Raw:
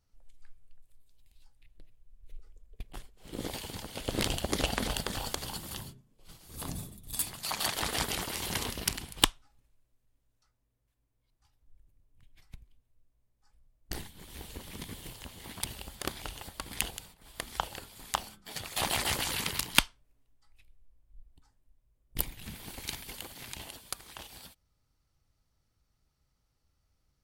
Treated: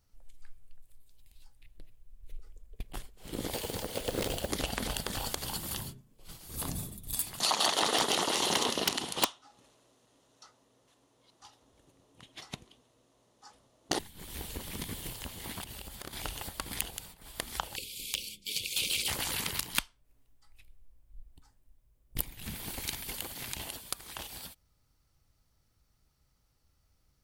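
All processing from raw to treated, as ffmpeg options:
ffmpeg -i in.wav -filter_complex "[0:a]asettb=1/sr,asplit=3[link_01][link_02][link_03];[link_01]atrim=end=3.534[link_04];[link_02]atrim=start=3.53:end=4.49,asetpts=PTS-STARTPTS,afade=type=in:duration=0.004:curve=qsin,afade=type=out:start_time=0.956:duration=0.004:curve=qsin,equalizer=frequency=490:width_type=o:width=0.9:gain=10,volume=21.5dB,asoftclip=hard,volume=-21.5dB,acrusher=bits=3:mode=log:mix=0:aa=0.000001[link_05];[link_03]atrim=start=4.486[link_06];[link_04][link_05]acrossfade=duration=0.004:curve1=hsin:curve2=qsin[link_07];[link_07][link_06]acrossfade=duration=0.004:curve1=qsin:curve2=hsin,asettb=1/sr,asplit=3[link_08][link_09][link_10];[link_08]atrim=end=7.404[link_11];[link_09]atrim=start=7.4:end=13.99,asetpts=PTS-STARTPTS,afade=type=in:duration=0.004:curve=qsin,afade=type=out:start_time=6.586:duration=0.004:curve=qsin,highpass=300,equalizer=frequency=1600:width_type=q:width=4:gain=-7,equalizer=frequency=2300:width_type=q:width=4:gain=-9,equalizer=frequency=4900:width_type=q:width=4:gain=-5,equalizer=frequency=8000:width_type=q:width=4:gain=-9,lowpass=frequency=8600:width=0.5412,lowpass=frequency=8600:width=1.3066,aeval=exprs='0.562*sin(PI/2*5.62*val(0)/0.562)':channel_layout=same[link_12];[link_10]atrim=start=13.986[link_13];[link_11][link_12]acrossfade=duration=0.004:curve1=hsin:curve2=qsin[link_14];[link_14][link_13]acrossfade=duration=0.004:curve1=qsin:curve2=hsin,asettb=1/sr,asplit=3[link_15][link_16][link_17];[link_15]atrim=end=15.624[link_18];[link_16]atrim=start=15.62:end=16.13,asetpts=PTS-STARTPTS,afade=type=in:duration=0.004:curve=qsin,afade=type=out:start_time=0.506:duration=0.004:curve=qsin,acompressor=threshold=-45dB:ratio=3:attack=3.2:release=140:knee=1:detection=peak,asoftclip=type=hard:threshold=-34.5dB[link_19];[link_17]atrim=start=16.126[link_20];[link_18][link_19]acrossfade=duration=0.004:curve1=hsin:curve2=qsin[link_21];[link_21][link_20]acrossfade=duration=0.004:curve1=qsin:curve2=hsin,asettb=1/sr,asplit=3[link_22][link_23][link_24];[link_22]atrim=end=17.764[link_25];[link_23]atrim=start=17.76:end=19.08,asetpts=PTS-STARTPTS,afade=type=in:duration=0.004:curve=qsin,afade=type=out:start_time=1.316:duration=0.004:curve=qsin,asuperstop=centerf=1100:order=20:qfactor=0.64,equalizer=frequency=440:width=0.36:gain=-9,asplit=2[link_26][link_27];[link_27]highpass=frequency=720:poles=1,volume=17dB,asoftclip=type=tanh:threshold=-10dB[link_28];[link_26][link_28]amix=inputs=2:normalize=0,lowpass=frequency=3500:poles=1,volume=-6dB[link_29];[link_24]atrim=start=19.076[link_30];[link_25][link_29]acrossfade=duration=0.004:curve1=hsin:curve2=qsin[link_31];[link_31][link_30]acrossfade=duration=0.004:curve1=qsin:curve2=hsin,highshelf=frequency=9900:gain=5.5,acompressor=threshold=-36dB:ratio=2.5,volume=3.5dB" out.wav

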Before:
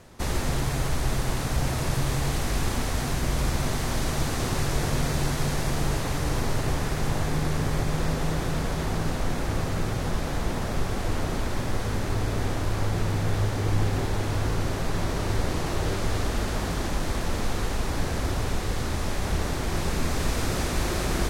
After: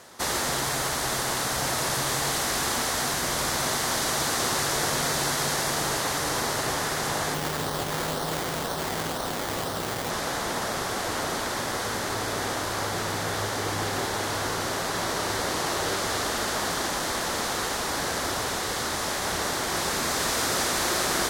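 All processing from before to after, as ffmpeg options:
ffmpeg -i in.wav -filter_complex "[0:a]asettb=1/sr,asplit=3[link_01][link_02][link_03];[link_01]atrim=end=7.344[link_04];[link_02]atrim=start=7.34:end=10.1,asetpts=PTS-STARTPTS,afade=type=in:duration=0.004:curve=qsin,afade=type=out:start_time=2.756:duration=0.004:curve=qsin,lowpass=1700,acrusher=samples=13:mix=1:aa=0.000001:lfo=1:lforange=7.8:lforate=2[link_05];[link_03]atrim=start=10.096[link_06];[link_04][link_05]acrossfade=duration=0.004:curve1=hsin:curve2=qsin[link_07];[link_07][link_06]acrossfade=duration=0.004:curve1=qsin:curve2=hsin,highpass=frequency=970:poles=1,equalizer=frequency=2500:width_type=o:width=0.49:gain=-6,volume=8.5dB" out.wav

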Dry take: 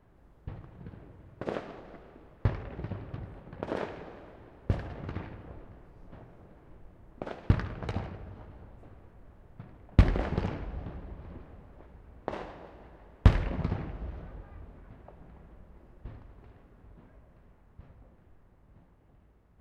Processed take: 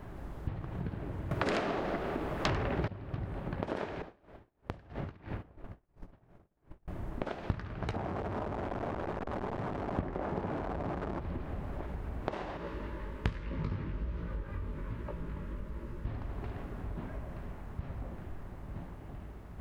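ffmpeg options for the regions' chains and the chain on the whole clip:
ffmpeg -i in.wav -filter_complex "[0:a]asettb=1/sr,asplit=3[link_01][link_02][link_03];[link_01]atrim=end=1.314[link_04];[link_02]atrim=start=1.31:end=2.88,asetpts=PTS-STARTPTS,afade=type=in:duration=0.004:curve=qsin,afade=type=out:start_time=1.566:duration=0.004:curve=qsin,lowshelf=frequency=120:gain=-7.5,aeval=exprs='0.168*sin(PI/2*7.08*val(0)/0.168)':channel_layout=same[link_05];[link_03]atrim=start=2.876[link_06];[link_04][link_05]acrossfade=duration=0.004:curve1=hsin:curve2=qsin[link_07];[link_07][link_06]acrossfade=duration=0.004:curve1=qsin:curve2=hsin,asettb=1/sr,asplit=3[link_08][link_09][link_10];[link_08]atrim=end=4.024[link_11];[link_09]atrim=start=4.02:end=6.88,asetpts=PTS-STARTPTS,afade=type=in:duration=0.004:curve=qsin,afade=type=out:start_time=2.856:duration=0.004:curve=qsin,agate=range=-33dB:threshold=-41dB:ratio=3:release=100:detection=peak,acompressor=threshold=-43dB:ratio=12:attack=3.2:release=140:knee=1:detection=peak,aeval=exprs='val(0)*pow(10,-24*(0.5-0.5*cos(2*PI*3*n/s))/20)':channel_layout=same[link_12];[link_10]atrim=start=6.876[link_13];[link_11][link_12]acrossfade=duration=0.004:curve1=hsin:curve2=qsin[link_14];[link_14][link_13]acrossfade=duration=0.004:curve1=qsin:curve2=hsin,asettb=1/sr,asplit=3[link_15][link_16][link_17];[link_15]atrim=end=7.944[link_18];[link_16]atrim=start=7.94:end=11.2,asetpts=PTS-STARTPTS,afade=type=in:duration=0.004:curve=qsin,afade=type=out:start_time=3.256:duration=0.004:curve=qsin,aeval=exprs='val(0)+0.5*0.0355*sgn(val(0))':channel_layout=same,lowpass=1000,aemphasis=mode=production:type=bsi[link_19];[link_17]atrim=start=11.196[link_20];[link_18][link_19]acrossfade=duration=0.004:curve1=hsin:curve2=qsin[link_21];[link_21][link_20]acrossfade=duration=0.004:curve1=qsin:curve2=hsin,asettb=1/sr,asplit=3[link_22][link_23][link_24];[link_22]atrim=end=12.574[link_25];[link_23]atrim=start=12.57:end=16.07,asetpts=PTS-STARTPTS,afade=type=in:duration=0.004:curve=qsin,afade=type=out:start_time=3.496:duration=0.004:curve=qsin,asuperstop=centerf=730:order=4:qfactor=2.9,flanger=delay=17:depth=4.1:speed=1.2[link_26];[link_24]atrim=start=16.066[link_27];[link_25][link_26]acrossfade=duration=0.004:curve1=hsin:curve2=qsin[link_28];[link_28][link_27]acrossfade=duration=0.004:curve1=qsin:curve2=hsin,acompressor=threshold=-50dB:ratio=5,bandreject=frequency=490:width=12,volume=16dB" out.wav

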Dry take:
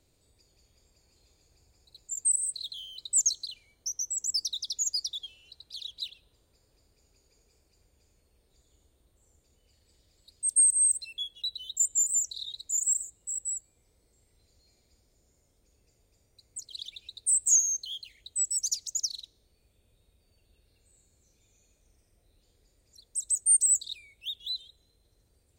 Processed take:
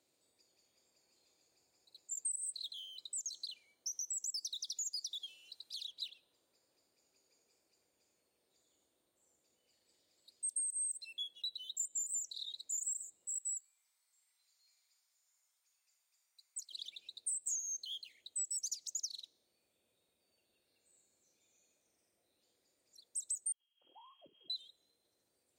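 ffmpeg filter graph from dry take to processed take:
ffmpeg -i in.wav -filter_complex "[0:a]asettb=1/sr,asplit=3[link_01][link_02][link_03];[link_01]atrim=end=2.664[link_04];[link_02]atrim=start=2.66:end=3.33,asetpts=PTS-STARTPTS,afade=type=in:duration=0.004:curve=qsin,afade=type=out:start_time=0.666:duration=0.004:curve=qsin,bandreject=frequency=4400:width=9.6,acompressor=threshold=-35dB:ratio=3:attack=3.2:release=140:knee=1:detection=peak[link_05];[link_03]atrim=start=3.326[link_06];[link_04][link_05]acrossfade=duration=0.004:curve1=hsin:curve2=qsin[link_07];[link_07][link_06]acrossfade=duration=0.004:curve1=qsin:curve2=hsin,asettb=1/sr,asplit=3[link_08][link_09][link_10];[link_08]atrim=end=3.924[link_11];[link_09]atrim=start=3.92:end=5.87,asetpts=PTS-STARTPTS,afade=type=in:duration=0.004:curve=qsin,afade=type=out:start_time=1.946:duration=0.004:curve=qsin,acompressor=threshold=-40dB:ratio=2.5:attack=3.2:release=140:knee=1:detection=peak,highshelf=frequency=3700:gain=8.5[link_12];[link_10]atrim=start=5.866[link_13];[link_11][link_12]acrossfade=duration=0.004:curve1=hsin:curve2=qsin[link_14];[link_14][link_13]acrossfade=duration=0.004:curve1=qsin:curve2=hsin,asettb=1/sr,asplit=3[link_15][link_16][link_17];[link_15]atrim=end=13.344[link_18];[link_16]atrim=start=13.34:end=16.72,asetpts=PTS-STARTPTS,afade=type=in:duration=0.004:curve=qsin,afade=type=out:start_time=3.376:duration=0.004:curve=qsin,highpass=frequency=1000:width=0.5412,highpass=frequency=1000:width=1.3066,highshelf=frequency=9100:gain=4[link_19];[link_17]atrim=start=16.716[link_20];[link_18][link_19]acrossfade=duration=0.004:curve1=hsin:curve2=qsin[link_21];[link_21][link_20]acrossfade=duration=0.004:curve1=qsin:curve2=hsin,asettb=1/sr,asplit=3[link_22][link_23][link_24];[link_22]atrim=end=23.524[link_25];[link_23]atrim=start=23.52:end=24.5,asetpts=PTS-STARTPTS,afade=type=in:duration=0.004:curve=qsin,afade=type=out:start_time=0.976:duration=0.004:curve=qsin,acompressor=threshold=-37dB:ratio=5:attack=3.2:release=140:knee=1:detection=peak,lowpass=frequency=2800:width_type=q:width=0.5098,lowpass=frequency=2800:width_type=q:width=0.6013,lowpass=frequency=2800:width_type=q:width=0.9,lowpass=frequency=2800:width_type=q:width=2.563,afreqshift=-3300,tiltshelf=frequency=780:gain=-4.5[link_26];[link_24]atrim=start=24.496[link_27];[link_25][link_26]acrossfade=duration=0.004:curve1=hsin:curve2=qsin[link_28];[link_28][link_27]acrossfade=duration=0.004:curve1=qsin:curve2=hsin,highpass=290,bandreject=frequency=430:width=12,acompressor=threshold=-30dB:ratio=10,volume=-6dB" out.wav

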